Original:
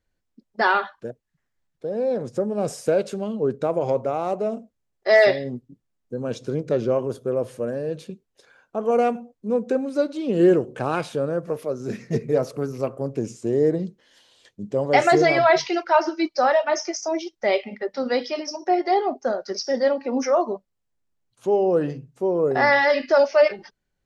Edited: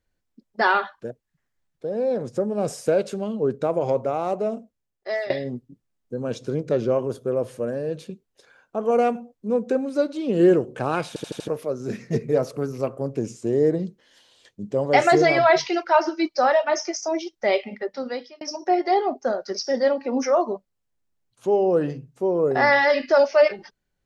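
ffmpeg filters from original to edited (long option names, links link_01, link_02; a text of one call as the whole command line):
ffmpeg -i in.wav -filter_complex "[0:a]asplit=8[link_01][link_02][link_03][link_04][link_05][link_06][link_07][link_08];[link_01]atrim=end=5.3,asetpts=PTS-STARTPTS,afade=type=out:start_time=4.48:duration=0.82:silence=0.105925[link_09];[link_02]atrim=start=5.3:end=11.162,asetpts=PTS-STARTPTS,afade=type=in:duration=0.004:curve=hsin:silence=0.105925[link_10];[link_03]atrim=start=11.078:end=11.162[link_11];[link_04]atrim=start=11.078:end=11.162[link_12];[link_05]atrim=start=11.078:end=11.162[link_13];[link_06]atrim=start=11.078:end=11.162[link_14];[link_07]atrim=start=11.478:end=18.41,asetpts=PTS-STARTPTS,afade=type=out:start_time=6.302:duration=0.63[link_15];[link_08]atrim=start=18.41,asetpts=PTS-STARTPTS,afade=type=in:duration=0.004:curve=hsin[link_16];[link_09][link_10]concat=n=2:v=0:a=1[link_17];[link_17][link_11]acrossfade=duration=0.004:curve1=hsin:curve2=hsin[link_18];[link_18][link_12]acrossfade=duration=0.004:curve1=hsin:curve2=hsin[link_19];[link_19][link_13]acrossfade=duration=0.004:curve1=hsin:curve2=hsin[link_20];[link_20][link_14]acrossfade=duration=0.004:curve1=hsin:curve2=hsin[link_21];[link_15][link_16]concat=n=2:v=0:a=1[link_22];[link_21][link_22]acrossfade=duration=0.004:curve1=hsin:curve2=hsin" out.wav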